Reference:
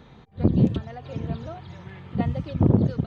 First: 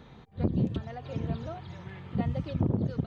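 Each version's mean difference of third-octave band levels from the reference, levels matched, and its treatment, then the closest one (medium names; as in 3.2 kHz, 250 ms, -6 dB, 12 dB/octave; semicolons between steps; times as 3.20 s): 3.0 dB: compression 4:1, threshold -22 dBFS, peak gain reduction 9 dB; trim -2 dB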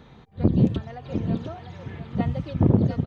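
1.0 dB: delay 701 ms -8.5 dB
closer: second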